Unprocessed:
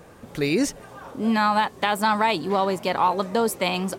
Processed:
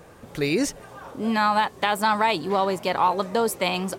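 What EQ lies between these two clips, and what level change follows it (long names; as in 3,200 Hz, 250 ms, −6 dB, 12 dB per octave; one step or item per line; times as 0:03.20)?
parametric band 230 Hz −3 dB 0.69 octaves
0.0 dB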